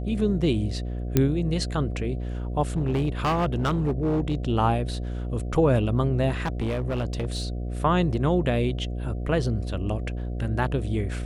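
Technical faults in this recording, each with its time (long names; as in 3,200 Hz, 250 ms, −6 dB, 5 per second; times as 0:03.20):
mains buzz 60 Hz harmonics 12 −30 dBFS
0:01.17: click −6 dBFS
0:02.76–0:04.35: clipping −19.5 dBFS
0:06.43–0:07.47: clipping −23 dBFS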